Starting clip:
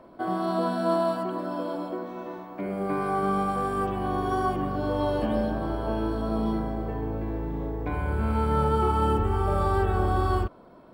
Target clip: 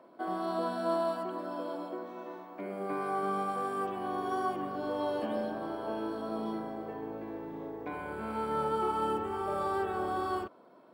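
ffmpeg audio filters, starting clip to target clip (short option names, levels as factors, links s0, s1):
-af "highpass=260,volume=0.531"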